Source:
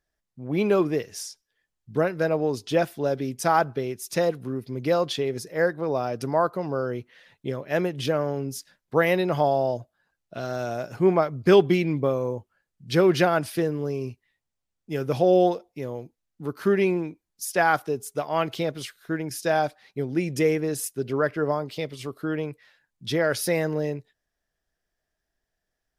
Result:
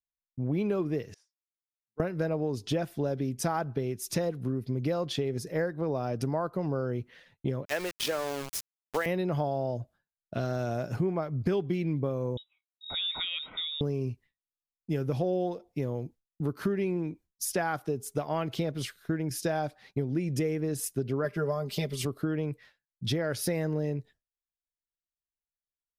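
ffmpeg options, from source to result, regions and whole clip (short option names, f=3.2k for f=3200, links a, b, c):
-filter_complex "[0:a]asettb=1/sr,asplit=3[a][b][c];[a]atrim=end=1.144[d];[b]atrim=start=1.14:end=2,asetpts=PTS-STARTPTS,afade=t=in:d=0.004:c=qsin,afade=t=out:st=0.856:d=0.004:c=qsin,deesser=0.3,lowpass=1.2k,aderivative[e];[c]atrim=start=1.996[f];[d][e]acrossfade=d=0.004:c1=hsin:c2=qsin[g];[g][f]acrossfade=d=0.004:c1=qsin:c2=hsin,asettb=1/sr,asplit=3[h][i][j];[h]atrim=end=7.654[k];[i]atrim=start=7.65:end=9.06,asetpts=PTS-STARTPTS,afade=t=in:d=0.004:c=qsin,afade=t=out:st=1.406:d=0.004:c=qsin,highpass=420,aeval=exprs='val(0)*gte(abs(val(0)),0.0224)':c=same,tiltshelf=f=1.1k:g=-5[l];[j]atrim=start=9.056[m];[k][l]acrossfade=d=0.004:c1=hsin:c2=qsin[n];[n][m]acrossfade=d=0.004:c1=qsin:c2=hsin,asettb=1/sr,asplit=3[o][p][q];[o]atrim=end=12.374[r];[p]atrim=start=12.37:end=13.81,asetpts=PTS-STARTPTS,afade=t=in:d=0.004:c=qsin,afade=t=out:st=1.436:d=0.004:c=qsin,acompressor=threshold=-36dB:ratio=2.5:attack=3.2:release=140:knee=1:detection=peak,lowpass=f=3.3k:t=q:w=0.5098,lowpass=f=3.3k:t=q:w=0.6013,lowpass=f=3.3k:t=q:w=0.9,lowpass=f=3.3k:t=q:w=2.563,afreqshift=-3900,asuperstop=centerf=1700:order=8:qfactor=6.9[s];[q]atrim=start=13.806[t];[r][s]acrossfade=d=0.004:c1=hsin:c2=qsin[u];[u][t]acrossfade=d=0.004:c1=qsin:c2=hsin,asettb=1/sr,asplit=3[v][w][x];[v]atrim=end=21.244[y];[w]atrim=start=21.24:end=22.05,asetpts=PTS-STARTPTS,afade=t=in:d=0.004:c=qsin,afade=t=out:st=0.806:d=0.004:c=qsin,highshelf=f=5.7k:g=10.5,aecho=1:1:5:0.73,atrim=end_sample=35721[z];[x]atrim=start=22.046[aa];[y][z]acrossfade=d=0.004:c1=hsin:c2=qsin[ab];[ab][aa]acrossfade=d=0.004:c1=qsin:c2=hsin,agate=range=-33dB:threshold=-48dB:ratio=3:detection=peak,lowshelf=f=280:g=11,acompressor=threshold=-27dB:ratio=6"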